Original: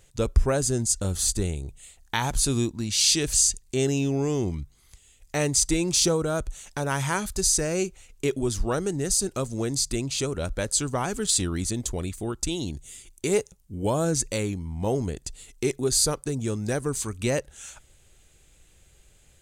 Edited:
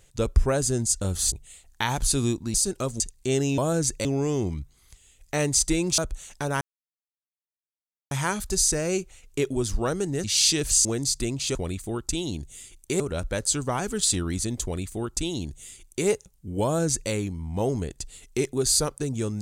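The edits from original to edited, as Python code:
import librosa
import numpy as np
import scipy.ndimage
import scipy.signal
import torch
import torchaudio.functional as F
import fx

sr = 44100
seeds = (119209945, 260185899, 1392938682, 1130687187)

y = fx.edit(x, sr, fx.cut(start_s=1.32, length_s=0.33),
    fx.swap(start_s=2.87, length_s=0.61, other_s=9.1, other_length_s=0.46),
    fx.cut(start_s=5.99, length_s=0.35),
    fx.insert_silence(at_s=6.97, length_s=1.5),
    fx.duplicate(start_s=11.89, length_s=1.45, to_s=10.26),
    fx.duplicate(start_s=13.9, length_s=0.47, to_s=4.06), tone=tone)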